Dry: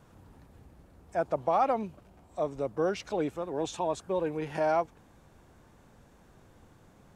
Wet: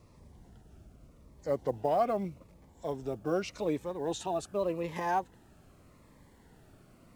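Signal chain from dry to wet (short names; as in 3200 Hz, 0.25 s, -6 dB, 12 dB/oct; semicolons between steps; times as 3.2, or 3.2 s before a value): speed glide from 73% -> 127%; companded quantiser 8-bit; cascading phaser falling 0.84 Hz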